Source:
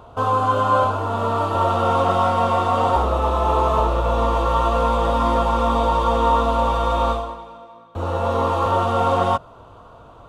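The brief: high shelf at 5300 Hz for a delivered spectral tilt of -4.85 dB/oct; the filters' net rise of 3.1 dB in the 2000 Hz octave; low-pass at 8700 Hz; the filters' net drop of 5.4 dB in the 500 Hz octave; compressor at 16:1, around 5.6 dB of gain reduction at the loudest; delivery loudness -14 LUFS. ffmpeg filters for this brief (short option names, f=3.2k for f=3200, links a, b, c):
-af "lowpass=8.7k,equalizer=f=500:t=o:g=-7,equalizer=f=2k:t=o:g=6.5,highshelf=f=5.3k:g=-7.5,acompressor=threshold=-20dB:ratio=16,volume=11dB"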